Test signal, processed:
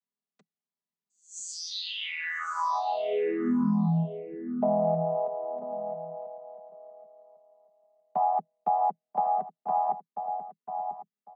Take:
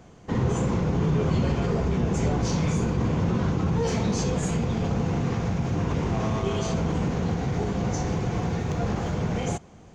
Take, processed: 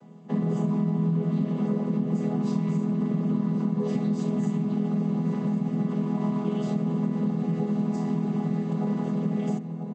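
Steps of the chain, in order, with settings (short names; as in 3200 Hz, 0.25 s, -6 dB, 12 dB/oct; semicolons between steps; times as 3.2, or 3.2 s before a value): chord vocoder major triad, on E3; comb 5.1 ms, depth 60%; outdoor echo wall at 170 m, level -10 dB; compressor, threshold -23 dBFS; on a send: echo 1.101 s -16 dB; on the sum: gain +1.5 dB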